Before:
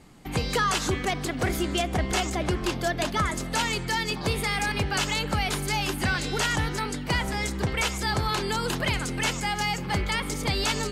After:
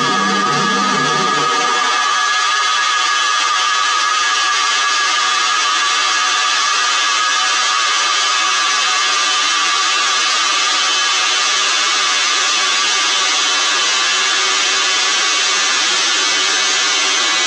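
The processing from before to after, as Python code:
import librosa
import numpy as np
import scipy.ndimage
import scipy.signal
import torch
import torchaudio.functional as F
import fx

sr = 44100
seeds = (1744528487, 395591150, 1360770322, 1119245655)

y = fx.peak_eq(x, sr, hz=240.0, db=5.5, octaves=1.1)
y = fx.rider(y, sr, range_db=10, speed_s=0.5)
y = fx.cabinet(y, sr, low_hz=120.0, low_slope=12, high_hz=6500.0, hz=(180.0, 510.0, 920.0, 3500.0, 5900.0), db=(4, -7, -3, 3, 4))
y = fx.paulstretch(y, sr, seeds[0], factor=49.0, window_s=0.5, from_s=0.66)
y = fx.filter_sweep_highpass(y, sr, from_hz=170.0, to_hz=1300.0, start_s=0.67, end_s=1.36, q=0.92)
y = fx.dmg_noise_band(y, sr, seeds[1], low_hz=300.0, high_hz=720.0, level_db=-52.0)
y = fx.doubler(y, sr, ms=39.0, db=-12)
y = fx.echo_split(y, sr, split_hz=2400.0, low_ms=105, high_ms=325, feedback_pct=52, wet_db=-4.5)
y = fx.stretch_vocoder(y, sr, factor=1.6)
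y = fx.env_flatten(y, sr, amount_pct=100)
y = y * 10.0 ** (6.0 / 20.0)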